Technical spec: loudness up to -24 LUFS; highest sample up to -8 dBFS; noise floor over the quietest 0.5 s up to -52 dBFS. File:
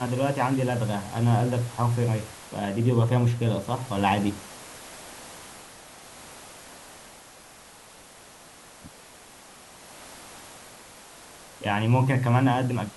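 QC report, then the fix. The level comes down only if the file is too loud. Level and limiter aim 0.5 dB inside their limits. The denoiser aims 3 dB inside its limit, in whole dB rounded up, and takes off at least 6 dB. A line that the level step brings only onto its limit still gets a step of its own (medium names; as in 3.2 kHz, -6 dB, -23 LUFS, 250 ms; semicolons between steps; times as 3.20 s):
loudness -25.0 LUFS: pass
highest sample -9.0 dBFS: pass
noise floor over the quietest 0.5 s -49 dBFS: fail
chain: noise reduction 6 dB, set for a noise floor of -49 dBFS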